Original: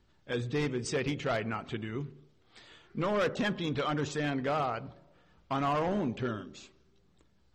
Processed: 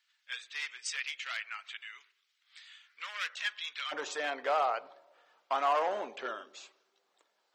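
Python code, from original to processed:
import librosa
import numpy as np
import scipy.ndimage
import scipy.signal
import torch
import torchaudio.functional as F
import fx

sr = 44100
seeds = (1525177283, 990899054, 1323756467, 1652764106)

y = fx.ladder_highpass(x, sr, hz=fx.steps((0.0, 1500.0), (3.91, 490.0)), resonance_pct=25)
y = y * 10.0 ** (7.0 / 20.0)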